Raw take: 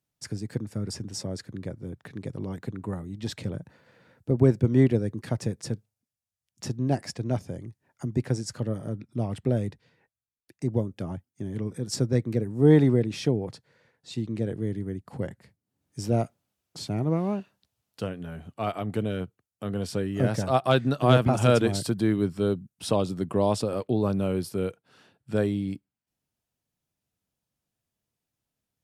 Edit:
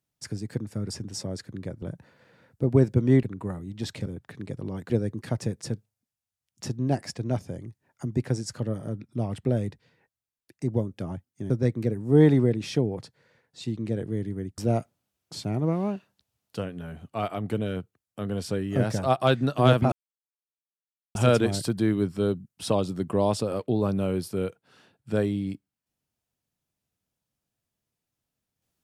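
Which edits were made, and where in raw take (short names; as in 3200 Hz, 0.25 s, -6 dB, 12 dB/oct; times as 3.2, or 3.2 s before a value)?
1.82–2.66 swap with 3.49–4.9
11.5–12 cut
15.08–16.02 cut
21.36 insert silence 1.23 s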